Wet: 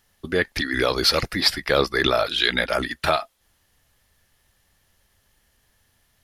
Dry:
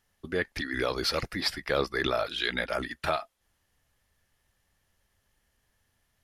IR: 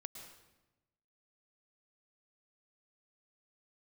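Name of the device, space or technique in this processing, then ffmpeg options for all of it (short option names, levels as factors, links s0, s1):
presence and air boost: -af "equalizer=f=4000:t=o:w=0.82:g=3,highshelf=f=11000:g=6,volume=2.37"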